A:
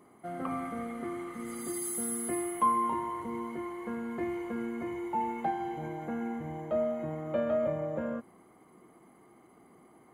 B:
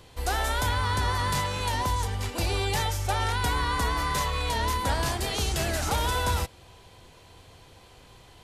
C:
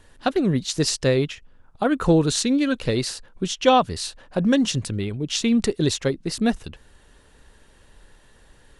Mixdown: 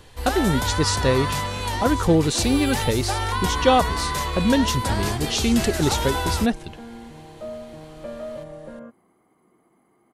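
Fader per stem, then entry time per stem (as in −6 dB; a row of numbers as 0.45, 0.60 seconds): −4.5, +1.5, −0.5 decibels; 0.70, 0.00, 0.00 seconds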